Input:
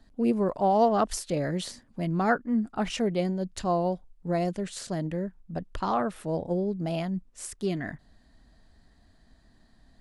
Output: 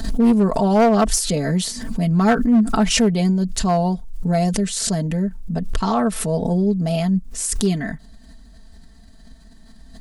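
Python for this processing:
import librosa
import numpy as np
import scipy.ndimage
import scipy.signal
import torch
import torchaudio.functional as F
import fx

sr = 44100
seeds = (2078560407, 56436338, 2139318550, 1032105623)

y = fx.bass_treble(x, sr, bass_db=6, treble_db=9)
y = y + 0.75 * np.pad(y, (int(4.5 * sr / 1000.0), 0))[:len(y)]
y = np.clip(y, -10.0 ** (-14.0 / 20.0), 10.0 ** (-14.0 / 20.0))
y = fx.pre_swell(y, sr, db_per_s=49.0)
y = F.gain(torch.from_numpy(y), 4.0).numpy()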